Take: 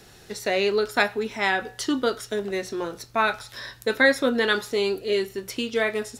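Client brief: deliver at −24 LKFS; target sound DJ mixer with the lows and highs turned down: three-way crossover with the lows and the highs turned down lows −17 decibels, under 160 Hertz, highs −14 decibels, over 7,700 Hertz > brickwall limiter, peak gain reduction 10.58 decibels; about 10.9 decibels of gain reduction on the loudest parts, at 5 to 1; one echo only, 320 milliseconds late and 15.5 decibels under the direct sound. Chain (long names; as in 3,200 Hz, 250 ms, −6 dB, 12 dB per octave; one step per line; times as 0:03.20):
downward compressor 5 to 1, threshold −26 dBFS
three-way crossover with the lows and the highs turned down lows −17 dB, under 160 Hz, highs −14 dB, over 7,700 Hz
single-tap delay 320 ms −15.5 dB
level +10.5 dB
brickwall limiter −13.5 dBFS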